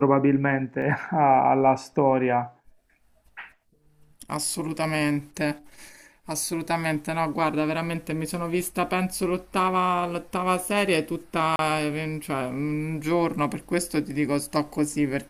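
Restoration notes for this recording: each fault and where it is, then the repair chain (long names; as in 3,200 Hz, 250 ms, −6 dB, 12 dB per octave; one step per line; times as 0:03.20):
0:00.82: drop-out 2.8 ms
0:11.56–0:11.59: drop-out 31 ms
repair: repair the gap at 0:00.82, 2.8 ms
repair the gap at 0:11.56, 31 ms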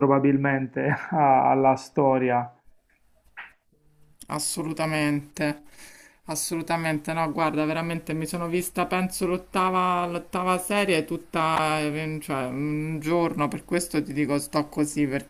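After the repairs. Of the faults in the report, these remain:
none of them is left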